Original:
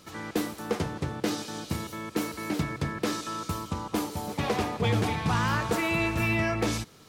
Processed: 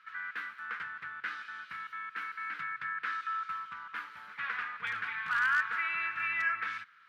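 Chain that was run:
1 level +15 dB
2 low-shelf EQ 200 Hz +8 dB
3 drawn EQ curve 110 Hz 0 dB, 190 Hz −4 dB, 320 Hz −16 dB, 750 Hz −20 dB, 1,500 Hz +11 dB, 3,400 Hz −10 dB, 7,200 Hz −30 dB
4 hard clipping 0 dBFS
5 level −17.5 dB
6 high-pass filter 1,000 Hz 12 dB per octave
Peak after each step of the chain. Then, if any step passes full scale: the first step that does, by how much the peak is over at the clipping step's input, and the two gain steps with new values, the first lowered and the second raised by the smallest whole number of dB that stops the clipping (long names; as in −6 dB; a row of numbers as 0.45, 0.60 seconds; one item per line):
−1.0, +3.0, +3.5, 0.0, −17.5, −19.0 dBFS
step 2, 3.5 dB
step 1 +11 dB, step 5 −13.5 dB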